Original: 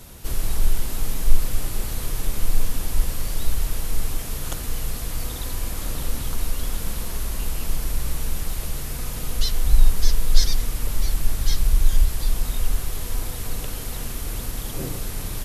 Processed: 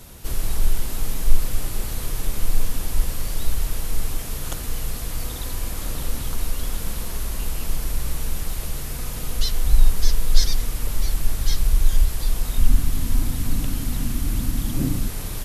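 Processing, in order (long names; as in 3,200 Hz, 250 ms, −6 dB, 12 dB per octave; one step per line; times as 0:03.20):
0:12.58–0:15.08: low shelf with overshoot 340 Hz +6.5 dB, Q 3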